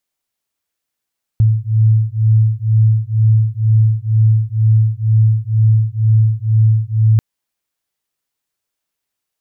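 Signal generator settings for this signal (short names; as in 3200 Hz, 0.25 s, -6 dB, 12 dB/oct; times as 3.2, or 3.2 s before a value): beating tones 109 Hz, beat 2.1 Hz, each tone -12.5 dBFS 5.79 s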